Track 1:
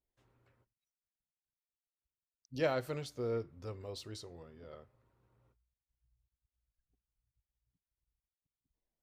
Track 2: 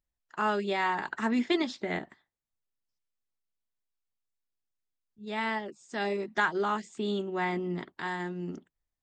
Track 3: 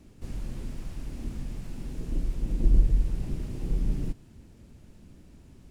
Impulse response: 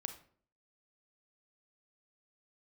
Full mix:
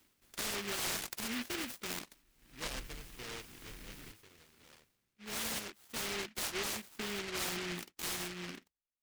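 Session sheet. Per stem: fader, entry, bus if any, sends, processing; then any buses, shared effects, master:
-8.0 dB, 0.00 s, no send, high shelf 2200 Hz -9.5 dB
-3.5 dB, 0.00 s, no send, gate -58 dBFS, range -12 dB; limiter -25 dBFS, peak gain reduction 10 dB
-9.0 dB, 0.00 s, no send, tone controls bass -8 dB, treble +14 dB; auto duck -23 dB, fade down 0.50 s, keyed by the second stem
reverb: off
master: low shelf 190 Hz -11.5 dB; noise-modulated delay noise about 2100 Hz, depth 0.43 ms

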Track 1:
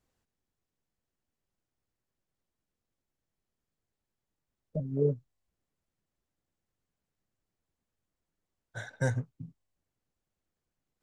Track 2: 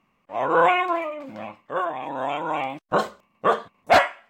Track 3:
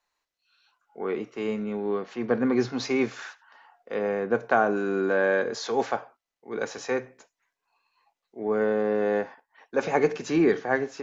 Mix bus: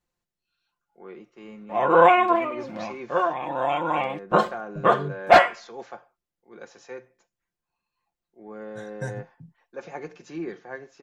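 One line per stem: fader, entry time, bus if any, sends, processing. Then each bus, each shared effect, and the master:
-4.5 dB, 0.00 s, no send, dry
+1.5 dB, 1.40 s, no send, high shelf 5700 Hz -10.5 dB
-13.5 dB, 0.00 s, no send, dry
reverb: off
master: comb 5.7 ms, depth 46%

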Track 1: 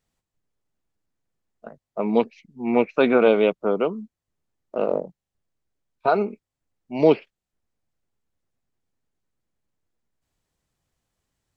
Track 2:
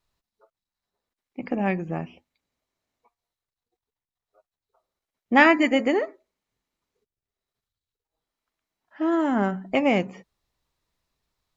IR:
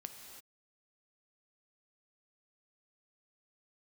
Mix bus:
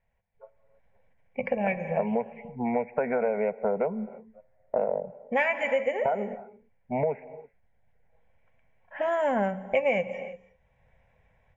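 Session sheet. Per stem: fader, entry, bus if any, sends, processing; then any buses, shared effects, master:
+1.0 dB, 0.00 s, send -10.5 dB, elliptic low-pass 2100 Hz, stop band 40 dB; compressor 4:1, threshold -26 dBFS, peak gain reduction 13 dB
-2.5 dB, 0.00 s, send -6.5 dB, low-pass opened by the level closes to 2800 Hz, open at -18 dBFS; small resonant body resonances 520/1100/2300 Hz, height 12 dB; auto duck -11 dB, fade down 0.40 s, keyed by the first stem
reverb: on, pre-delay 3 ms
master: AGC gain up to 13.5 dB; fixed phaser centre 1200 Hz, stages 6; compressor 2:1, threshold -29 dBFS, peak gain reduction 10.5 dB

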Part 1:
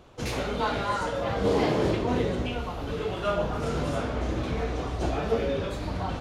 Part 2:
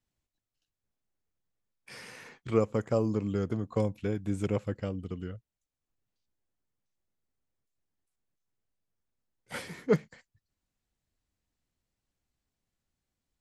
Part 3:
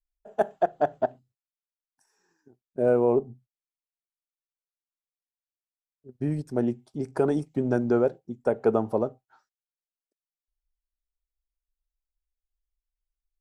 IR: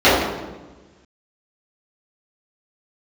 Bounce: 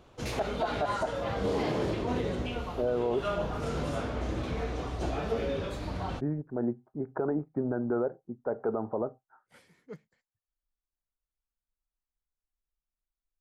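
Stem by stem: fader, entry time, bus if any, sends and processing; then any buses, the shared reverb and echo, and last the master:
-4.0 dB, 0.00 s, no send, dry
-20.0 dB, 0.00 s, no send, dry
+0.5 dB, 0.00 s, no send, steep low-pass 1600 Hz; low shelf 420 Hz -6 dB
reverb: off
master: limiter -20.5 dBFS, peak gain reduction 9.5 dB

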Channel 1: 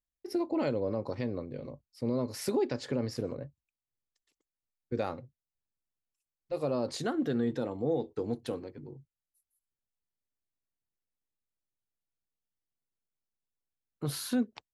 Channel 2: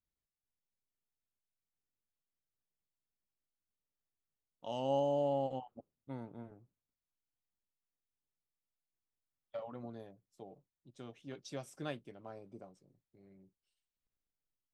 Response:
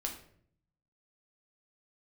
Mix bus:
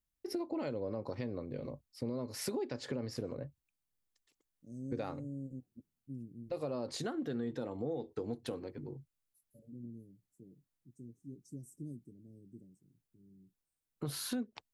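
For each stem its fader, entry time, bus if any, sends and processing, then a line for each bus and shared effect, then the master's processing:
+1.5 dB, 0.00 s, no send, dry
+1.5 dB, 0.00 s, no send, inverse Chebyshev band-stop 830–3200 Hz, stop band 60 dB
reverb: off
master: compressor 3:1, threshold -37 dBFS, peak gain reduction 10.5 dB

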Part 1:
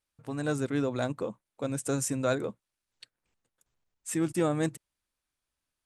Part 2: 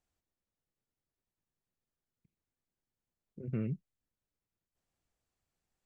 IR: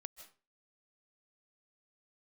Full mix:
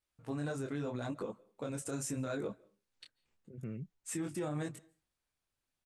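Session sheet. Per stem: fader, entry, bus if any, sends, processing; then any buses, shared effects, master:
0.0 dB, 0.00 s, send -10 dB, compressor 1.5:1, threshold -33 dBFS, peak gain reduction 4 dB; high shelf 8800 Hz -4.5 dB; detuned doubles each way 28 cents
-7.5 dB, 0.10 s, no send, dry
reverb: on, RT60 0.35 s, pre-delay 0.115 s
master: limiter -29.5 dBFS, peak gain reduction 8 dB

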